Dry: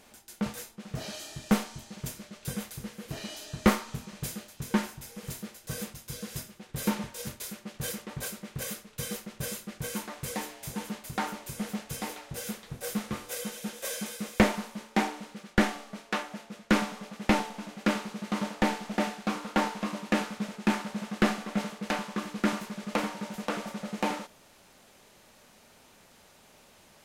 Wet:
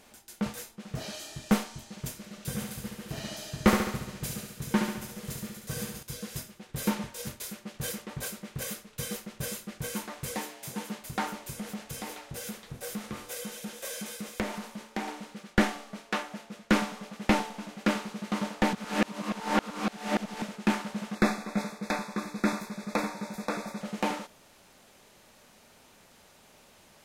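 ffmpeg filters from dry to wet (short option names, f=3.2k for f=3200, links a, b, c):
-filter_complex "[0:a]asettb=1/sr,asplit=3[a][b][c];[a]atrim=end=2.174[d];[b]atrim=start=2.17:end=6.03,asetpts=PTS-STARTPTS,afade=t=in:d=0.004:c=qsin,afade=t=out:st=3.856:d=0.004:c=qsin,aecho=1:1:70|140|210|280|350|420|490|560:0.531|0.313|0.185|0.109|0.0643|0.038|0.0224|0.0132,atrim=end_sample=170226[e];[c]atrim=start=6.026[f];[d][e]acrossfade=d=0.004:c1=hsin:c2=qsin[g];[g][f]acrossfade=d=0.004:c1=qsin:c2=hsin,asettb=1/sr,asplit=3[h][i][j];[h]atrim=end=10.364[k];[i]atrim=start=10.36:end=10.99,asetpts=PTS-STARTPTS,afade=t=in:d=0.004:c=qsin,afade=t=out:st=0.626:d=0.004:c=qsin,highpass=140[l];[j]atrim=start=10.986[m];[k][l]acrossfade=d=0.004:c1=hsin:c2=qsin[n];[n][m]acrossfade=d=0.004:c1=qsin:c2=hsin,asettb=1/sr,asplit=3[o][p][q];[o]atrim=end=11.514[r];[p]atrim=start=11.51:end=15.08,asetpts=PTS-STARTPTS,afade=t=in:d=0.004:c=qsin,afade=t=out:st=3.566:d=0.004:c=qsin,acompressor=threshold=-35dB:ratio=2:attack=3.2:release=140:knee=1:detection=peak[s];[q]atrim=start=15.076[t];[r][s]acrossfade=d=0.004:c1=hsin:c2=qsin[u];[u][t]acrossfade=d=0.004:c1=qsin:c2=hsin,asettb=1/sr,asplit=3[v][w][x];[v]atrim=end=21.154[y];[w]atrim=start=21.15:end=23.81,asetpts=PTS-STARTPTS,afade=t=in:d=0.004:c=qsin,afade=t=out:st=2.656:d=0.004:c=qsin,asuperstop=centerf=3000:order=20:qfactor=4.1[z];[x]atrim=start=23.806[aa];[y][z]acrossfade=d=0.004:c1=hsin:c2=qsin[ab];[ab][aa]acrossfade=d=0.004:c1=qsin:c2=hsin,asplit=3[ac][ad][ae];[ac]atrim=end=18.732[af];[ad]atrim=start=18.728:end=20.422,asetpts=PTS-STARTPTS,areverse[ag];[ae]atrim=start=20.418[ah];[af][ag]acrossfade=d=0.004:c1=hsin:c2=hsin[ai];[ai][ah]acrossfade=d=0.004:c1=hsin:c2=hsin"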